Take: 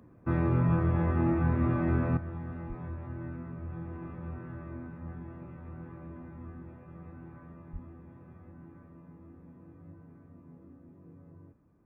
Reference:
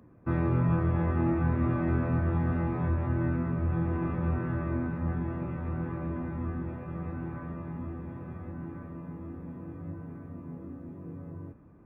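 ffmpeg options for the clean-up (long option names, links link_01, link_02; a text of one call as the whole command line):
ffmpeg -i in.wav -filter_complex "[0:a]asplit=3[link_01][link_02][link_03];[link_01]afade=type=out:start_time=2.68:duration=0.02[link_04];[link_02]highpass=frequency=140:width=0.5412,highpass=frequency=140:width=1.3066,afade=type=in:start_time=2.68:duration=0.02,afade=type=out:start_time=2.8:duration=0.02[link_05];[link_03]afade=type=in:start_time=2.8:duration=0.02[link_06];[link_04][link_05][link_06]amix=inputs=3:normalize=0,asplit=3[link_07][link_08][link_09];[link_07]afade=type=out:start_time=7.72:duration=0.02[link_10];[link_08]highpass=frequency=140:width=0.5412,highpass=frequency=140:width=1.3066,afade=type=in:start_time=7.72:duration=0.02,afade=type=out:start_time=7.84:duration=0.02[link_11];[link_09]afade=type=in:start_time=7.84:duration=0.02[link_12];[link_10][link_11][link_12]amix=inputs=3:normalize=0,asetnsamples=nb_out_samples=441:pad=0,asendcmd='2.17 volume volume 11dB',volume=0dB" out.wav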